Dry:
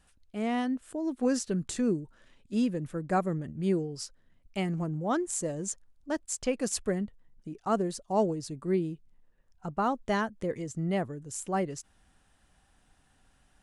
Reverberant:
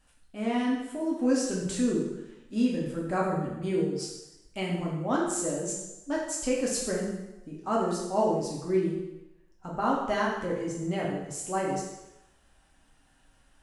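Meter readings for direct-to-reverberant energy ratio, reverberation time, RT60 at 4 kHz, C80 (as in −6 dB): −4.5 dB, 0.95 s, 0.90 s, 4.5 dB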